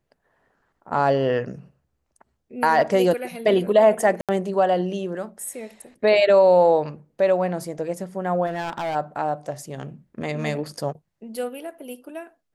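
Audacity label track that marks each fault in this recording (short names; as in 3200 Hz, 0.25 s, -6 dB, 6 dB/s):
4.210000	4.290000	gap 77 ms
8.460000	8.960000	clipped -23.5 dBFS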